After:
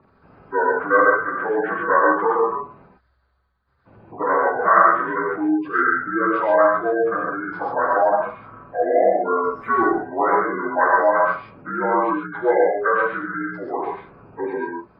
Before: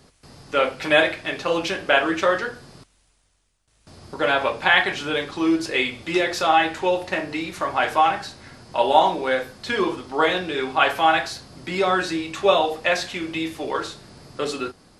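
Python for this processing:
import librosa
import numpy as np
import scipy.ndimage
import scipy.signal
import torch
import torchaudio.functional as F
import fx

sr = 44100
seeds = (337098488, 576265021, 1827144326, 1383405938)

y = fx.partial_stretch(x, sr, pct=79)
y = fx.spec_gate(y, sr, threshold_db=-20, keep='strong')
y = fx.leveller(y, sr, passes=1, at=(9.43, 9.9))
y = fx.high_shelf_res(y, sr, hz=2000.0, db=-11.5, q=3.0)
y = fx.rev_gated(y, sr, seeds[0], gate_ms=160, shape='rising', drr_db=-0.5)
y = y * 10.0 ** (-1.5 / 20.0)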